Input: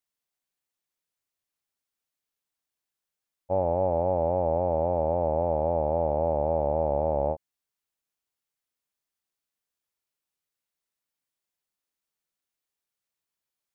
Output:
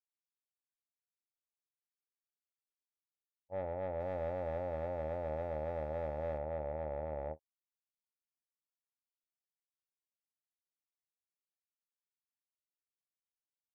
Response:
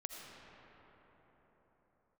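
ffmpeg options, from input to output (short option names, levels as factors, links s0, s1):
-filter_complex "[0:a]asettb=1/sr,asplit=3[s0][s1][s2];[s0]atrim=end=4.004[s3];[s1]atrim=start=4:end=6.38,asetpts=PTS-STARTPTS,afade=t=in:d=0.004:c=qsin,afade=t=out:st=2.376:d=0.004:c=qsin,aeval=exprs='val(0)+0.5*0.00944*sgn(val(0))':c=same[s4];[s2]atrim=start=6.376[s5];[s3][s4]acrossfade=d=0.004:c1=hsin:c2=qsin[s6];[s6][s5]acrossfade=d=0.004:c1=qsin:c2=hsin,lowpass=f=1500:p=1,agate=range=0.0224:threshold=0.224:ratio=3:detection=peak,asoftclip=type=tanh:threshold=0.015,asplit=2[s7][s8];[s8]adelay=26,volume=0.224[s9];[s7][s9]amix=inputs=2:normalize=0,volume=1.88"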